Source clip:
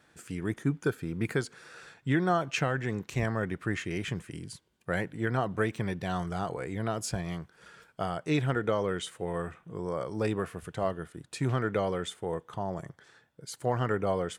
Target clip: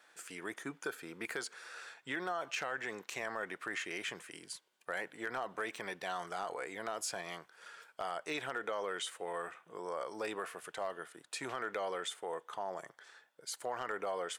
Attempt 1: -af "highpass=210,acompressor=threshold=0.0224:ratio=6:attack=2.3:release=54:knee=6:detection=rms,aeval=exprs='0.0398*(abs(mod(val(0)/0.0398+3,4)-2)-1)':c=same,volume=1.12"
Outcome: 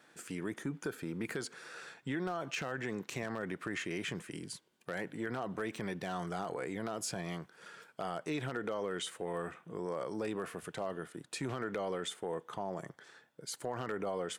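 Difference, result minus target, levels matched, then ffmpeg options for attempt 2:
250 Hz band +7.5 dB
-af "highpass=610,acompressor=threshold=0.0224:ratio=6:attack=2.3:release=54:knee=6:detection=rms,aeval=exprs='0.0398*(abs(mod(val(0)/0.0398+3,4)-2)-1)':c=same,volume=1.12"

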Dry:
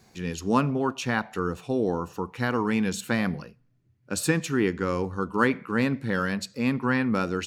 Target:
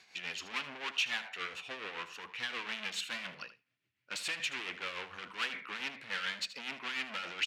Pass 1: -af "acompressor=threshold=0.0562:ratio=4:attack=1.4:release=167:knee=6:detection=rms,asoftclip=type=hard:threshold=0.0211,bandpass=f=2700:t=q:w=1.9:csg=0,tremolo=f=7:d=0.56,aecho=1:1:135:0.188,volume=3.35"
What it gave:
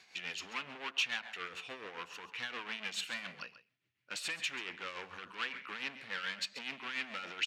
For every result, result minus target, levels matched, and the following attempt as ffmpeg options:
echo 58 ms late; compression: peak gain reduction +11.5 dB
-af "acompressor=threshold=0.0562:ratio=4:attack=1.4:release=167:knee=6:detection=rms,asoftclip=type=hard:threshold=0.0211,bandpass=f=2700:t=q:w=1.9:csg=0,tremolo=f=7:d=0.56,aecho=1:1:77:0.188,volume=3.35"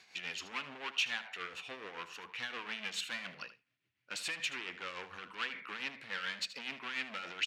compression: peak gain reduction +11.5 dB
-af "asoftclip=type=hard:threshold=0.0211,bandpass=f=2700:t=q:w=1.9:csg=0,tremolo=f=7:d=0.56,aecho=1:1:77:0.188,volume=3.35"

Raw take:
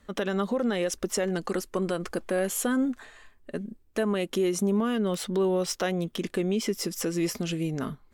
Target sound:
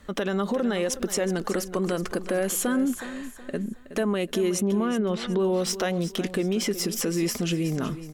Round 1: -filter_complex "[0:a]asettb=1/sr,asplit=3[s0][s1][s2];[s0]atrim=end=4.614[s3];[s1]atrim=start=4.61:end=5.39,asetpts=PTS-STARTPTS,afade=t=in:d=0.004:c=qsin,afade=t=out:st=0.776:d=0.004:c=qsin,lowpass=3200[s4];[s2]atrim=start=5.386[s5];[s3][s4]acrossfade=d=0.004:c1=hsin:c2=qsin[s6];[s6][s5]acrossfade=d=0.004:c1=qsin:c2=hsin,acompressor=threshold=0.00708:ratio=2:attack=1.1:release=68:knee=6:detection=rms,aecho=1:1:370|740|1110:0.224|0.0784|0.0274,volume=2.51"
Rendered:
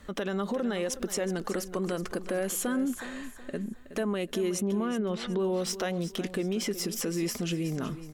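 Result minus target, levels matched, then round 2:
compression: peak gain reduction +4.5 dB
-filter_complex "[0:a]asettb=1/sr,asplit=3[s0][s1][s2];[s0]atrim=end=4.614[s3];[s1]atrim=start=4.61:end=5.39,asetpts=PTS-STARTPTS,afade=t=in:d=0.004:c=qsin,afade=t=out:st=0.776:d=0.004:c=qsin,lowpass=3200[s4];[s2]atrim=start=5.386[s5];[s3][s4]acrossfade=d=0.004:c1=hsin:c2=qsin[s6];[s6][s5]acrossfade=d=0.004:c1=qsin:c2=hsin,acompressor=threshold=0.0211:ratio=2:attack=1.1:release=68:knee=6:detection=rms,aecho=1:1:370|740|1110:0.224|0.0784|0.0274,volume=2.51"

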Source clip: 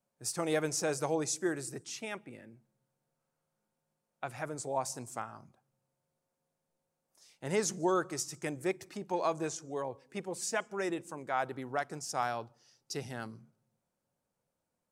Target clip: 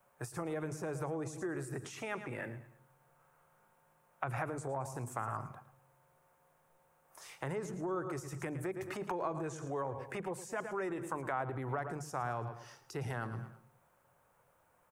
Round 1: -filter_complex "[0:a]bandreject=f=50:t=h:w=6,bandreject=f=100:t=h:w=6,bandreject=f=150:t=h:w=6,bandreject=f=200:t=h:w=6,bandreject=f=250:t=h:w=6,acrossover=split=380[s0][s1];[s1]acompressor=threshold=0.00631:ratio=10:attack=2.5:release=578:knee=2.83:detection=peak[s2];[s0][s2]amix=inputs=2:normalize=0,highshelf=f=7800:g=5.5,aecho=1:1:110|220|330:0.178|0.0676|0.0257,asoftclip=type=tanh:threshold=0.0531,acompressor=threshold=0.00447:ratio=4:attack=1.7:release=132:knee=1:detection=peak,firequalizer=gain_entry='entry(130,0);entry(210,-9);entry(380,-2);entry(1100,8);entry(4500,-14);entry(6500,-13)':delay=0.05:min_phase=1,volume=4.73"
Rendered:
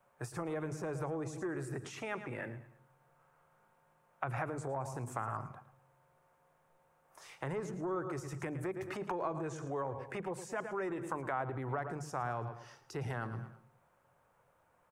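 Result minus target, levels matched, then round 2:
saturation: distortion +16 dB; 8 kHz band -2.5 dB
-filter_complex "[0:a]bandreject=f=50:t=h:w=6,bandreject=f=100:t=h:w=6,bandreject=f=150:t=h:w=6,bandreject=f=200:t=h:w=6,bandreject=f=250:t=h:w=6,acrossover=split=380[s0][s1];[s1]acompressor=threshold=0.00631:ratio=10:attack=2.5:release=578:knee=2.83:detection=peak[s2];[s0][s2]amix=inputs=2:normalize=0,highshelf=f=7800:g=15.5,aecho=1:1:110|220|330:0.178|0.0676|0.0257,asoftclip=type=tanh:threshold=0.141,acompressor=threshold=0.00447:ratio=4:attack=1.7:release=132:knee=1:detection=peak,firequalizer=gain_entry='entry(130,0);entry(210,-9);entry(380,-2);entry(1100,8);entry(4500,-14);entry(6500,-13)':delay=0.05:min_phase=1,volume=4.73"

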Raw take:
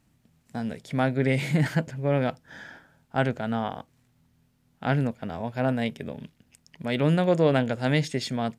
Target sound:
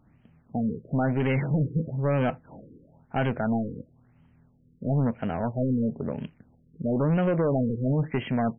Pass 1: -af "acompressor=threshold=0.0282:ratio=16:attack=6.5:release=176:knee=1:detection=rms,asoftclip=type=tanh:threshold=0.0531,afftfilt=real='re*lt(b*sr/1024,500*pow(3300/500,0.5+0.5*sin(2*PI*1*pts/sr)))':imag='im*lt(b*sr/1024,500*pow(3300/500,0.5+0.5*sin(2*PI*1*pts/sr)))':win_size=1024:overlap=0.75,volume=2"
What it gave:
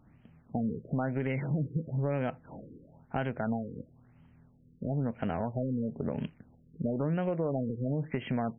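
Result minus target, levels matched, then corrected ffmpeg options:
compression: peak gain reduction +11 dB
-af "acompressor=threshold=0.106:ratio=16:attack=6.5:release=176:knee=1:detection=rms,asoftclip=type=tanh:threshold=0.0531,afftfilt=real='re*lt(b*sr/1024,500*pow(3300/500,0.5+0.5*sin(2*PI*1*pts/sr)))':imag='im*lt(b*sr/1024,500*pow(3300/500,0.5+0.5*sin(2*PI*1*pts/sr)))':win_size=1024:overlap=0.75,volume=2"

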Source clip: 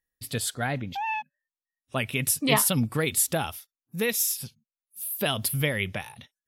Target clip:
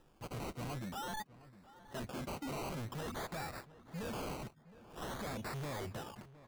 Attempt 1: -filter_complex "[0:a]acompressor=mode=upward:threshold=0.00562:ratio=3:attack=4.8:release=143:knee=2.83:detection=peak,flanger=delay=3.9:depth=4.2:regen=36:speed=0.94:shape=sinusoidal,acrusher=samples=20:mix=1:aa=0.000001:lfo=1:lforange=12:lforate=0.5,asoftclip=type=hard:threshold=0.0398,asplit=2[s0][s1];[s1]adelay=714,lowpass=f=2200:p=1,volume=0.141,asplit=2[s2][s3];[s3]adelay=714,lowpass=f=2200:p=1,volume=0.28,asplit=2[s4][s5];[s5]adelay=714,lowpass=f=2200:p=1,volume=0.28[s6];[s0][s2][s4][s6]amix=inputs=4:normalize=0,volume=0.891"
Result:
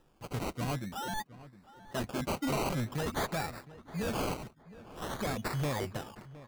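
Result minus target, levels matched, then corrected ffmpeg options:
hard clipper: distortion -6 dB
-filter_complex "[0:a]acompressor=mode=upward:threshold=0.00562:ratio=3:attack=4.8:release=143:knee=2.83:detection=peak,flanger=delay=3.9:depth=4.2:regen=36:speed=0.94:shape=sinusoidal,acrusher=samples=20:mix=1:aa=0.000001:lfo=1:lforange=12:lforate=0.5,asoftclip=type=hard:threshold=0.0112,asplit=2[s0][s1];[s1]adelay=714,lowpass=f=2200:p=1,volume=0.141,asplit=2[s2][s3];[s3]adelay=714,lowpass=f=2200:p=1,volume=0.28,asplit=2[s4][s5];[s5]adelay=714,lowpass=f=2200:p=1,volume=0.28[s6];[s0][s2][s4][s6]amix=inputs=4:normalize=0,volume=0.891"

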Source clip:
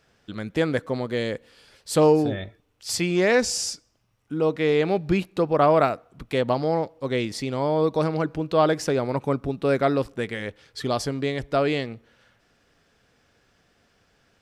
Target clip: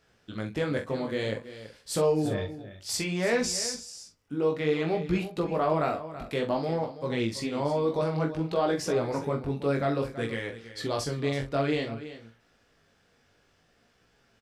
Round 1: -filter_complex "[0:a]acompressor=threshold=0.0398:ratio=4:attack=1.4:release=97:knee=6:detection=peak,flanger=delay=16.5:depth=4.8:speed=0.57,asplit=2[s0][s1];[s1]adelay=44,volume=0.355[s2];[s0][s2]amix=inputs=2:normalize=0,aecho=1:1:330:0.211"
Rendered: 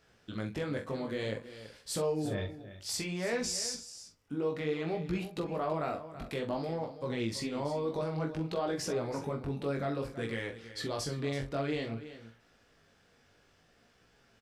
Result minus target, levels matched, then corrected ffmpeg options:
compression: peak gain reduction +7.5 dB
-filter_complex "[0:a]acompressor=threshold=0.126:ratio=4:attack=1.4:release=97:knee=6:detection=peak,flanger=delay=16.5:depth=4.8:speed=0.57,asplit=2[s0][s1];[s1]adelay=44,volume=0.355[s2];[s0][s2]amix=inputs=2:normalize=0,aecho=1:1:330:0.211"

